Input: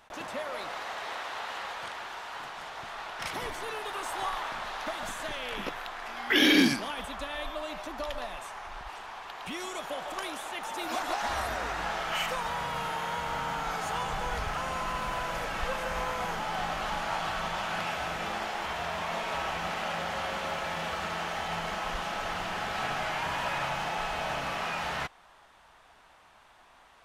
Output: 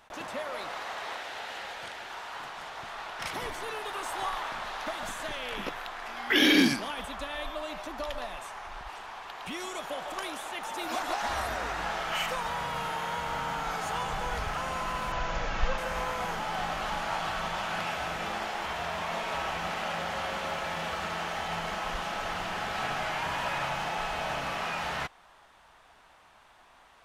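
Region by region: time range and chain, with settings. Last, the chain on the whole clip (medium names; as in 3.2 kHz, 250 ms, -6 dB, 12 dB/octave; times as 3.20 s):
1.16–2.10 s: peaking EQ 1.1 kHz -8 dB 0.46 oct + short-mantissa float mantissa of 8-bit
15.12–15.78 s: steep low-pass 7.1 kHz 96 dB/octave + bass shelf 77 Hz +11.5 dB
whole clip: none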